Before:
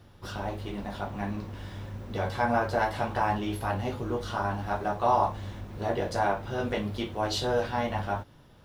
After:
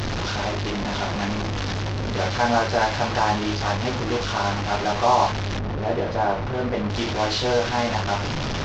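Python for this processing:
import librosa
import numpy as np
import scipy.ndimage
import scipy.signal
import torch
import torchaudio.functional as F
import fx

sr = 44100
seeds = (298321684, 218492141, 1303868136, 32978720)

y = fx.delta_mod(x, sr, bps=32000, step_db=-25.5)
y = fx.lowpass(y, sr, hz=1200.0, slope=6, at=(5.59, 6.9))
y = y * librosa.db_to_amplitude(5.5)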